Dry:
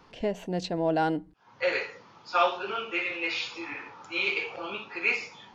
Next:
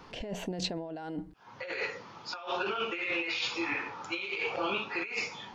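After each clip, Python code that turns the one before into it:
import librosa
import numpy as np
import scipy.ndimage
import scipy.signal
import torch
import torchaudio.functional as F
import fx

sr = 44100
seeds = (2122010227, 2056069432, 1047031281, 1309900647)

y = fx.over_compress(x, sr, threshold_db=-35.0, ratio=-1.0)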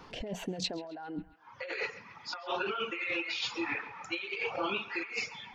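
y = fx.dereverb_blind(x, sr, rt60_s=2.0)
y = fx.echo_banded(y, sr, ms=135, feedback_pct=73, hz=1600.0, wet_db=-14.5)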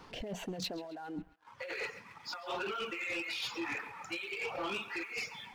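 y = fx.leveller(x, sr, passes=2)
y = y * 10.0 ** (-9.0 / 20.0)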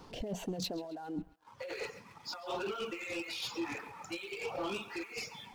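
y = fx.peak_eq(x, sr, hz=1900.0, db=-9.0, octaves=1.7)
y = y * 10.0 ** (3.0 / 20.0)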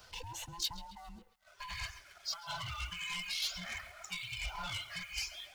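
y = fx.band_invert(x, sr, width_hz=500)
y = fx.tone_stack(y, sr, knobs='10-0-10')
y = y * 10.0 ** (5.5 / 20.0)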